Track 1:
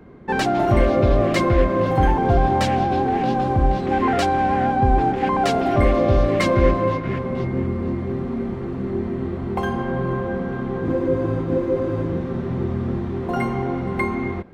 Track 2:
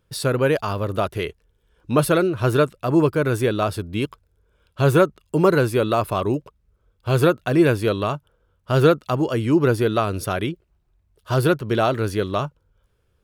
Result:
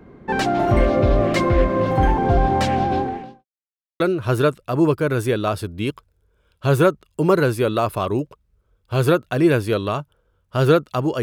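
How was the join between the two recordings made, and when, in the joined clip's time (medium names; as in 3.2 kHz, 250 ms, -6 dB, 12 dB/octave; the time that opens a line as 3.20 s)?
track 1
2.97–3.45 s: fade out quadratic
3.45–4.00 s: mute
4.00 s: go over to track 2 from 2.15 s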